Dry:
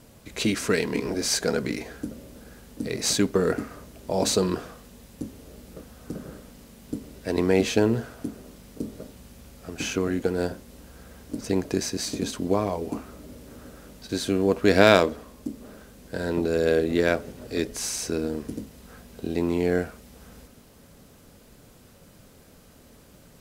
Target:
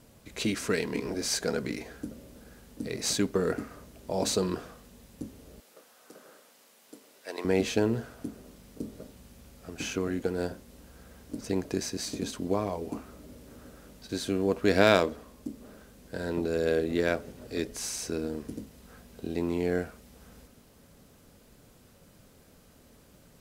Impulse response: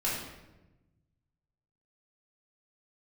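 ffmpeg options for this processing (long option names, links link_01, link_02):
-filter_complex "[0:a]asettb=1/sr,asplit=3[link_01][link_02][link_03];[link_01]atrim=end=5.604[link_04];[link_02]atrim=start=5.6:end=7.45,asetpts=PTS-STARTPTS,afade=type=in:duration=0.004:curve=qsin,afade=type=out:start_time=1.846:duration=0.004:curve=qsin,highpass=630[link_05];[link_03]atrim=start=7.446[link_06];[link_04][link_05]acrossfade=duration=0.004:curve1=hsin:curve2=qsin[link_07];[link_07][link_06]acrossfade=duration=0.004:curve1=qsin:curve2=hsin,volume=-5dB"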